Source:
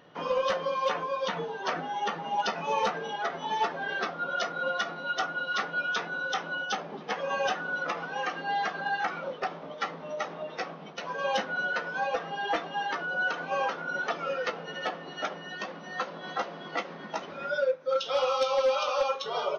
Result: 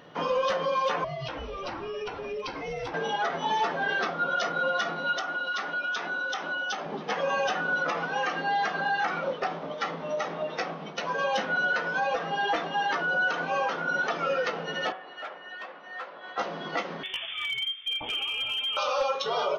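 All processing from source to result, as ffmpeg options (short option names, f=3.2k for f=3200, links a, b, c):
-filter_complex "[0:a]asettb=1/sr,asplit=3[a][b][c];[a]atrim=end=1.044[d];[b]atrim=start=1.04:end=2.94,asetpts=PTS-STARTPTS,afade=t=in:d=0.004:c=qsin,afade=t=out:st=1.896:d=0.004:c=qsin,highpass=790,acompressor=threshold=-37dB:ratio=5:attack=3.2:release=140:knee=1:detection=peak,afreqshift=-400[e];[c]atrim=start=2.936[f];[d][e]acrossfade=d=0.004:c1=hsin:c2=qsin[g];[g][f]acrossfade=d=0.004:c1=qsin:c2=hsin,asettb=1/sr,asplit=3[h][i][j];[h]atrim=end=5.174[k];[i]atrim=start=5.17:end=6.86,asetpts=PTS-STARTPTS,afade=t=in:d=0.004:c=qsin,afade=t=out:st=1.686:d=0.004:c=qsin,equalizer=f=140:w=2:g=-13.5,acompressor=threshold=-33dB:ratio=5:attack=3.2:release=140:knee=1:detection=peak,bandreject=f=480:w=6.7[l];[j]atrim=start=6.856[m];[k][l]acrossfade=d=0.004:c1=hsin:c2=qsin[n];[n][m]acrossfade=d=0.004:c1=qsin:c2=hsin,asettb=1/sr,asplit=3[o][p][q];[o]atrim=end=14.924[r];[p]atrim=start=14.92:end=16.38,asetpts=PTS-STARTPTS,afade=t=in:d=0.004:c=qsin,afade=t=out:st=1.456:d=0.004:c=qsin,equalizer=f=900:w=0.51:g=-6,volume=36dB,asoftclip=hard,volume=-36dB,highpass=650,lowpass=2.1k[s];[q]atrim=start=16.376[t];[r][s]acrossfade=d=0.004:c1=hsin:c2=qsin[u];[u][t]acrossfade=d=0.004:c1=qsin:c2=hsin,asettb=1/sr,asplit=3[v][w][x];[v]atrim=end=17.034[y];[w]atrim=start=17.03:end=18.77,asetpts=PTS-STARTPTS,afade=t=in:d=0.004:c=qsin,afade=t=out:st=1.736:d=0.004:c=qsin,lowpass=f=3.1k:t=q:w=0.5098,lowpass=f=3.1k:t=q:w=0.6013,lowpass=f=3.1k:t=q:w=0.9,lowpass=f=3.1k:t=q:w=2.563,afreqshift=-3700,acompressor=threshold=-32dB:ratio=20:attack=3.2:release=140:knee=1:detection=peak,aeval=exprs='clip(val(0),-1,0.0282)':c=same[z];[x]atrim=start=18.766[aa];[y][z]acrossfade=d=0.004:c1=hsin:c2=qsin[ab];[ab][aa]acrossfade=d=0.004:c1=qsin:c2=hsin,bandreject=f=188.2:t=h:w=4,bandreject=f=376.4:t=h:w=4,bandreject=f=564.6:t=h:w=4,bandreject=f=752.8:t=h:w=4,bandreject=f=941:t=h:w=4,bandreject=f=1.1292k:t=h:w=4,bandreject=f=1.3174k:t=h:w=4,bandreject=f=1.5056k:t=h:w=4,bandreject=f=1.6938k:t=h:w=4,bandreject=f=1.882k:t=h:w=4,bandreject=f=2.0702k:t=h:w=4,bandreject=f=2.2584k:t=h:w=4,bandreject=f=2.4466k:t=h:w=4,bandreject=f=2.6348k:t=h:w=4,bandreject=f=2.823k:t=h:w=4,bandreject=f=3.0112k:t=h:w=4,bandreject=f=3.1994k:t=h:w=4,bandreject=f=3.3876k:t=h:w=4,alimiter=level_in=0.5dB:limit=-24dB:level=0:latency=1:release=52,volume=-0.5dB,volume=5.5dB"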